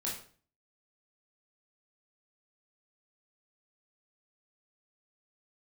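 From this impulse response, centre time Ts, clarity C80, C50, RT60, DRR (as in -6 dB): 38 ms, 10.0 dB, 5.0 dB, 0.45 s, -5.0 dB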